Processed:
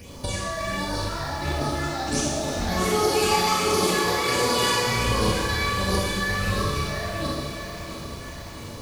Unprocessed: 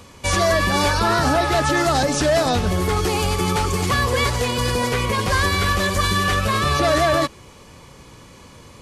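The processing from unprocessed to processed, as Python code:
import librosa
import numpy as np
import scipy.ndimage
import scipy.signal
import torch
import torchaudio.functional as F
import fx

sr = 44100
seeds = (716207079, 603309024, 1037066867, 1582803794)

y = fx.highpass(x, sr, hz=240.0, slope=12, at=(2.67, 4.87))
y = fx.over_compress(y, sr, threshold_db=-23.0, ratio=-0.5)
y = fx.dmg_crackle(y, sr, seeds[0], per_s=130.0, level_db=-32.0)
y = fx.phaser_stages(y, sr, stages=8, low_hz=350.0, high_hz=2800.0, hz=1.4, feedback_pct=25)
y = fx.echo_feedback(y, sr, ms=662, feedback_pct=50, wet_db=-11)
y = fx.rev_schroeder(y, sr, rt60_s=1.4, comb_ms=27, drr_db=-4.0)
y = fx.echo_crushed(y, sr, ms=360, feedback_pct=80, bits=6, wet_db=-14.0)
y = F.gain(torch.from_numpy(y), -3.5).numpy()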